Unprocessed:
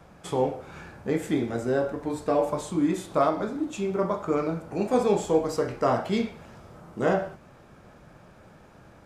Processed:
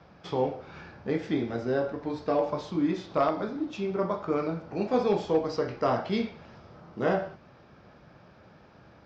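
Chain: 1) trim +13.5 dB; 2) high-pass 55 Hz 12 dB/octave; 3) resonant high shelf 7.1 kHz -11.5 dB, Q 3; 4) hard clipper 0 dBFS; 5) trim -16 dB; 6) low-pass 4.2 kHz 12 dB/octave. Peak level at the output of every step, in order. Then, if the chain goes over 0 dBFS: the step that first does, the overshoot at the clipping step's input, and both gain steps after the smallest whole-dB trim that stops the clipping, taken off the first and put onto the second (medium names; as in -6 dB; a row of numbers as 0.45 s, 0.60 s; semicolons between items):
+4.0 dBFS, +4.5 dBFS, +4.5 dBFS, 0.0 dBFS, -16.0 dBFS, -16.0 dBFS; step 1, 4.5 dB; step 1 +8.5 dB, step 5 -11 dB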